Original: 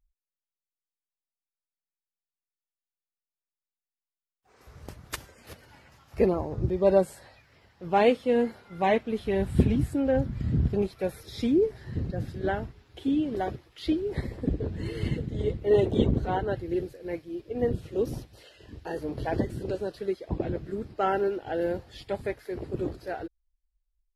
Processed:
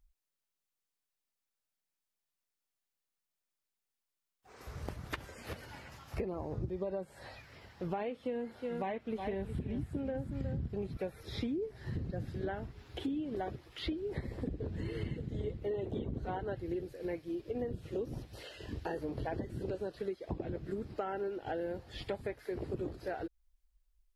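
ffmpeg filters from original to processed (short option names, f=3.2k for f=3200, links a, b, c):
-filter_complex "[0:a]asettb=1/sr,asplit=3[a][b][c];[a]atrim=end=8.154[d];[b]atrim=start=8.15:end=10.97,asetpts=PTS-STARTPTS,afade=t=in:d=0.004:c=qsin,afade=t=out:st=2.816:d=0.004:c=qsin,aecho=1:1:364:0.282,atrim=end_sample=124362[e];[c]atrim=start=10.966[f];[d][e]acrossfade=d=0.004:c1=hsin:c2=qsin[g];[g][f]acrossfade=d=0.004:c1=qsin:c2=hsin,acrossover=split=3400[h][i];[i]acompressor=threshold=-58dB:ratio=4:attack=1:release=60[j];[h][j]amix=inputs=2:normalize=0,alimiter=limit=-17dB:level=0:latency=1:release=247,acompressor=threshold=-40dB:ratio=6,volume=4.5dB"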